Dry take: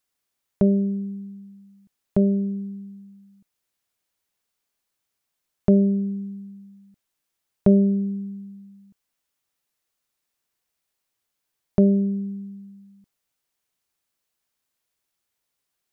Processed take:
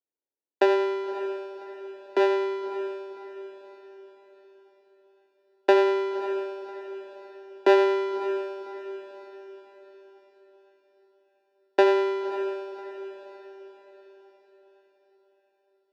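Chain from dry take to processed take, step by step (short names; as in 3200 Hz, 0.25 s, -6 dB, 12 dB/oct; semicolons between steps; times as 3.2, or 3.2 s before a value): HPF 150 Hz 6 dB/oct; low-pass opened by the level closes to 310 Hz, open at -19.5 dBFS; sample-rate reducer 1000 Hz, jitter 0%; frequency shift +190 Hz; short-mantissa float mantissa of 6-bit; air absorption 250 m; diffused feedback echo 0.575 s, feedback 46%, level -12.5 dB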